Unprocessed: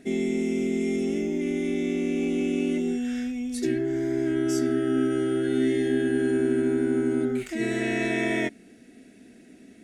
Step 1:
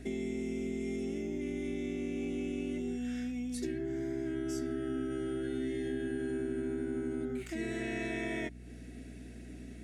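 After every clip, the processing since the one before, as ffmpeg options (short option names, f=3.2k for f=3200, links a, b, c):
-af "acompressor=threshold=-39dB:ratio=2.5,aeval=exprs='val(0)+0.00398*(sin(2*PI*60*n/s)+sin(2*PI*2*60*n/s)/2+sin(2*PI*3*60*n/s)/3+sin(2*PI*4*60*n/s)/4+sin(2*PI*5*60*n/s)/5)':c=same"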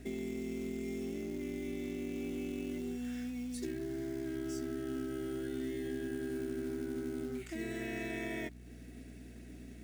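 -af "acrusher=bits=5:mode=log:mix=0:aa=0.000001,volume=-3dB"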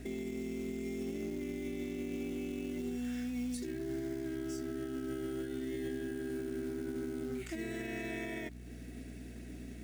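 -af "alimiter=level_in=10.5dB:limit=-24dB:level=0:latency=1:release=88,volume=-10.5dB,volume=3.5dB"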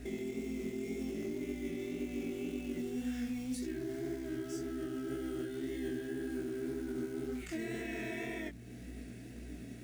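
-af "flanger=delay=19:depth=7.2:speed=1.9,volume=3dB"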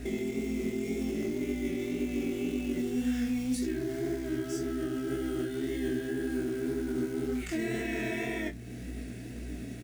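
-filter_complex "[0:a]asplit=2[a][b];[b]adelay=32,volume=-13.5dB[c];[a][c]amix=inputs=2:normalize=0,volume=6.5dB"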